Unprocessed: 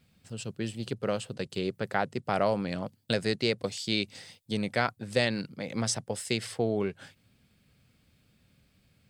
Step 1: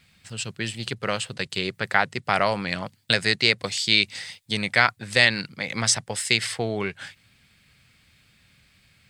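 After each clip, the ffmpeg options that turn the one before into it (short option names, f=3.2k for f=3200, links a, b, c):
-af "equalizer=f=250:t=o:w=1:g=-4,equalizer=f=500:t=o:w=1:g=-4,equalizer=f=1k:t=o:w=1:g=3,equalizer=f=2k:t=o:w=1:g=9,equalizer=f=4k:t=o:w=1:g=5,equalizer=f=8k:t=o:w=1:g=5,volume=4dB"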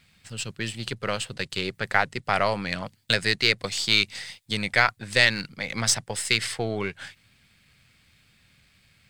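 -af "aeval=exprs='if(lt(val(0),0),0.708*val(0),val(0))':c=same"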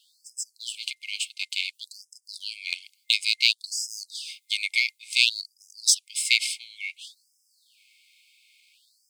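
-af "afftfilt=real='re*(1-between(b*sr/4096,740,2100))':imag='im*(1-between(b*sr/4096,740,2100))':win_size=4096:overlap=0.75,afftfilt=real='re*gte(b*sr/1024,790*pow(5000/790,0.5+0.5*sin(2*PI*0.57*pts/sr)))':imag='im*gte(b*sr/1024,790*pow(5000/790,0.5+0.5*sin(2*PI*0.57*pts/sr)))':win_size=1024:overlap=0.75,volume=3dB"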